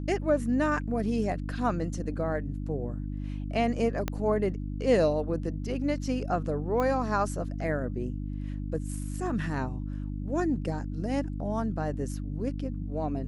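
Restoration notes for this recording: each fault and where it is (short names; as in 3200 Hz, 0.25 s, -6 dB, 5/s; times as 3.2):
hum 50 Hz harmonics 6 -34 dBFS
4.08 pop -15 dBFS
6.8 pop -18 dBFS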